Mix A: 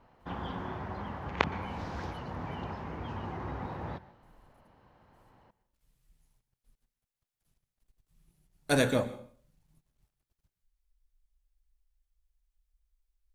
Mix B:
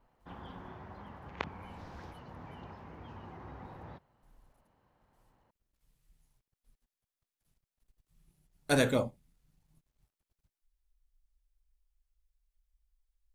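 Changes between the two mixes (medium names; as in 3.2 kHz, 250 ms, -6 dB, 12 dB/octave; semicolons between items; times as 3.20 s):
background -9.0 dB; reverb: off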